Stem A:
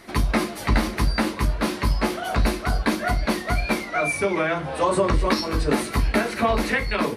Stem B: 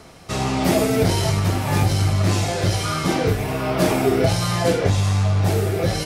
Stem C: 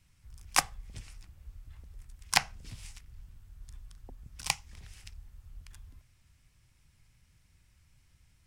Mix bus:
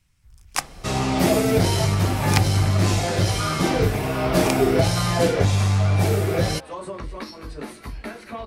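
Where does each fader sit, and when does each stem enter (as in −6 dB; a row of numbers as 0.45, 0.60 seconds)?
−13.0, −0.5, +0.5 decibels; 1.90, 0.55, 0.00 seconds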